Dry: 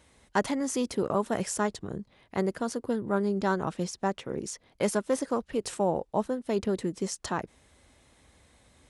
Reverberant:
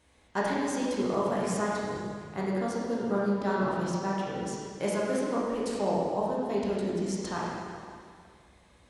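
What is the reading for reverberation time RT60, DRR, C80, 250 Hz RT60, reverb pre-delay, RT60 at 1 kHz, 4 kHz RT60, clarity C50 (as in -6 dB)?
2.1 s, -6.0 dB, -0.5 dB, 2.1 s, 6 ms, 2.1 s, 2.0 s, -2.0 dB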